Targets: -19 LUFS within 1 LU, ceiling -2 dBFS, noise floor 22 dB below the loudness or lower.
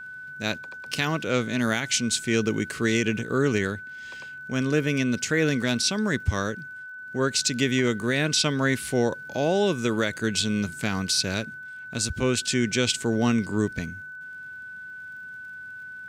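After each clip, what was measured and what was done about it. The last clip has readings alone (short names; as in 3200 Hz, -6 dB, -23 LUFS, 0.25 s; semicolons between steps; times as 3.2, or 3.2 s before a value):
ticks 40/s; steady tone 1500 Hz; tone level -37 dBFS; loudness -25.0 LUFS; peak -9.0 dBFS; loudness target -19.0 LUFS
-> de-click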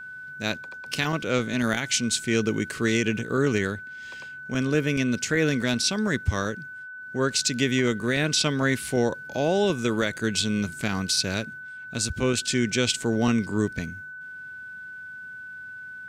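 ticks 0.44/s; steady tone 1500 Hz; tone level -37 dBFS
-> notch 1500 Hz, Q 30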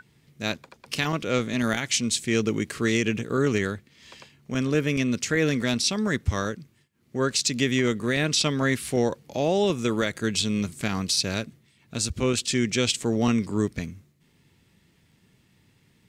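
steady tone none; loudness -25.5 LUFS; peak -9.5 dBFS; loudness target -19.0 LUFS
-> gain +6.5 dB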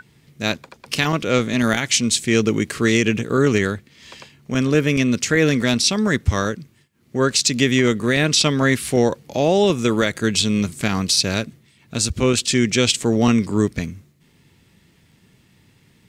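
loudness -19.0 LUFS; peak -3.0 dBFS; noise floor -56 dBFS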